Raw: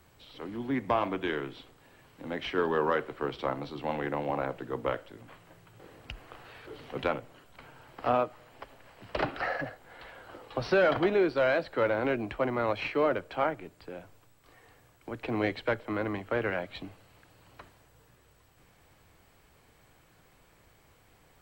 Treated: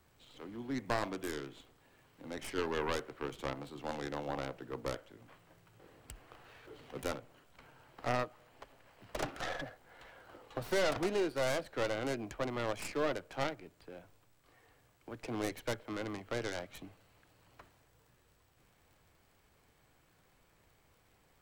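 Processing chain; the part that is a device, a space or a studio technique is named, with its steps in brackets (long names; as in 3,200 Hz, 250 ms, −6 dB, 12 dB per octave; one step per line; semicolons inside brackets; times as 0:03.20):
record under a worn stylus (stylus tracing distortion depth 0.47 ms; surface crackle; pink noise bed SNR 39 dB)
level −7.5 dB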